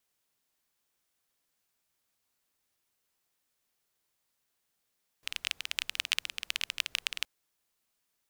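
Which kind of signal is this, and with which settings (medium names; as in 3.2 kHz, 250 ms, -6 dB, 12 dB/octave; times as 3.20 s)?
rain from filtered ticks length 2.02 s, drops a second 18, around 2.8 kHz, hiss -27.5 dB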